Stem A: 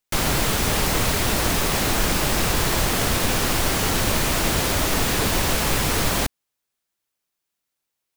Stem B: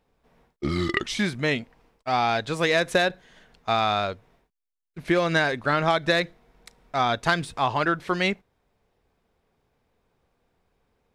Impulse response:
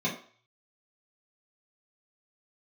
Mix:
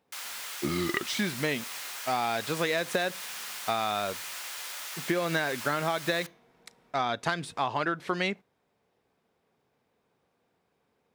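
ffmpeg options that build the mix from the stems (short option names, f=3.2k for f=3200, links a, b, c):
-filter_complex "[0:a]highpass=1.3k,volume=-13.5dB,asplit=2[a][b];[b]volume=-20dB[c];[1:a]volume=-1.5dB[d];[2:a]atrim=start_sample=2205[e];[c][e]afir=irnorm=-1:irlink=0[f];[a][d][f]amix=inputs=3:normalize=0,highpass=140,acompressor=threshold=-25dB:ratio=4"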